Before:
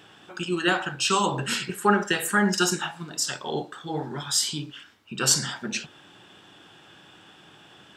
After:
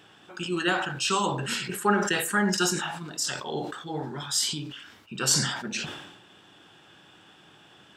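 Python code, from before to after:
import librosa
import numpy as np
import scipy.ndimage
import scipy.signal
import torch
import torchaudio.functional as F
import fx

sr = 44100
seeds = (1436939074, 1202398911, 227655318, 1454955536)

y = fx.sustainer(x, sr, db_per_s=55.0)
y = y * 10.0 ** (-3.0 / 20.0)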